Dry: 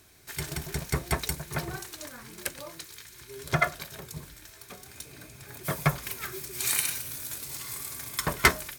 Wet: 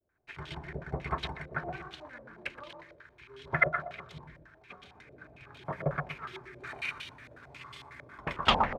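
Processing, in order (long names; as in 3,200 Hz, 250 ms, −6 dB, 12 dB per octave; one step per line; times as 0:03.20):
turntable brake at the end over 0.48 s
downward expander −48 dBFS
repeating echo 121 ms, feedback 36%, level −6 dB
low-pass on a step sequencer 11 Hz 560–3,200 Hz
level −8 dB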